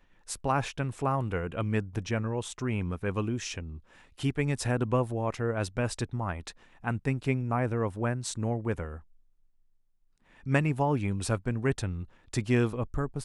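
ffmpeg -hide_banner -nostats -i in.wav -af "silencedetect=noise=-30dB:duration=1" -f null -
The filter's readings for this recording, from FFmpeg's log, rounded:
silence_start: 8.94
silence_end: 10.47 | silence_duration: 1.53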